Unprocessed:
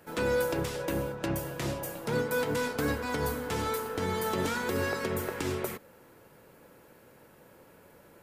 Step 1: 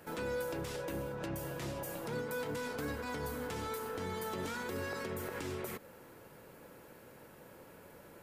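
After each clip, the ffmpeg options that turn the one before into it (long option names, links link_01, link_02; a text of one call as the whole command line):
ffmpeg -i in.wav -af "alimiter=level_in=8.5dB:limit=-24dB:level=0:latency=1:release=141,volume=-8.5dB,volume=1dB" out.wav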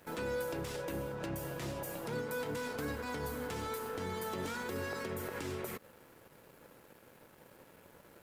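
ffmpeg -i in.wav -af "aeval=exprs='sgn(val(0))*max(abs(val(0))-0.00106,0)':channel_layout=same,volume=1dB" out.wav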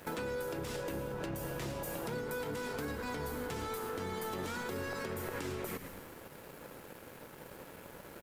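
ffmpeg -i in.wav -filter_complex "[0:a]asplit=6[link_01][link_02][link_03][link_04][link_05][link_06];[link_02]adelay=111,afreqshift=-94,volume=-12dB[link_07];[link_03]adelay=222,afreqshift=-188,volume=-18.4dB[link_08];[link_04]adelay=333,afreqshift=-282,volume=-24.8dB[link_09];[link_05]adelay=444,afreqshift=-376,volume=-31.1dB[link_10];[link_06]adelay=555,afreqshift=-470,volume=-37.5dB[link_11];[link_01][link_07][link_08][link_09][link_10][link_11]amix=inputs=6:normalize=0,acompressor=threshold=-44dB:ratio=6,volume=8dB" out.wav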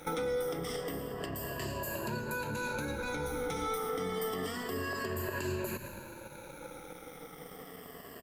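ffmpeg -i in.wav -af "afftfilt=real='re*pow(10,16/40*sin(2*PI*(1.4*log(max(b,1)*sr/1024/100)/log(2)-(-0.29)*(pts-256)/sr)))':imag='im*pow(10,16/40*sin(2*PI*(1.4*log(max(b,1)*sr/1024/100)/log(2)-(-0.29)*(pts-256)/sr)))':win_size=1024:overlap=0.75" out.wav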